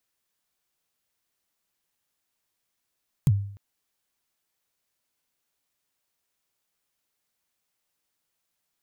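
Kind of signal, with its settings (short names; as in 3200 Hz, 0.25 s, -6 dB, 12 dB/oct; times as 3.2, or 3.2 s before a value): kick drum length 0.30 s, from 160 Hz, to 100 Hz, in 43 ms, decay 0.58 s, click on, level -13 dB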